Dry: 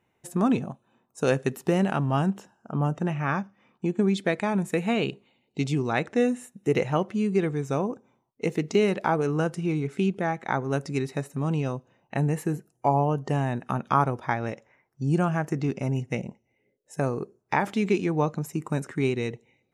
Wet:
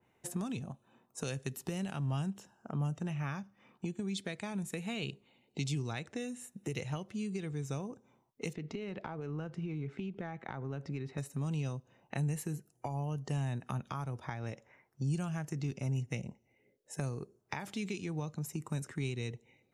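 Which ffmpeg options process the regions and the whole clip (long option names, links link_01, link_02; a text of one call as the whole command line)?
ffmpeg -i in.wav -filter_complex "[0:a]asettb=1/sr,asplit=3[link_01][link_02][link_03];[link_01]atrim=end=8.534[link_04];[link_02]atrim=start=8.53:end=11.18,asetpts=PTS-STARTPTS,afade=type=in:duration=0.004:curve=qsin,afade=type=out:start_time=2.646:duration=0.004:curve=qsin,lowpass=2700,acompressor=threshold=-27dB:ratio=4:attack=3.2:release=140:knee=1:detection=peak[link_05];[link_03]atrim=start=11.176[link_06];[link_04][link_05]acrossfade=duration=0.004:curve1=hsin:curve2=qsin[link_07];[link_07][link_06]acrossfade=duration=0.004:curve1=qsin:curve2=hsin,alimiter=limit=-14.5dB:level=0:latency=1:release=261,acrossover=split=120|3000[link_08][link_09][link_10];[link_09]acompressor=threshold=-40dB:ratio=6[link_11];[link_08][link_11][link_10]amix=inputs=3:normalize=0,adynamicequalizer=threshold=0.00178:dfrequency=2100:dqfactor=0.7:tfrequency=2100:tqfactor=0.7:attack=5:release=100:ratio=0.375:range=1.5:mode=cutabove:tftype=highshelf" out.wav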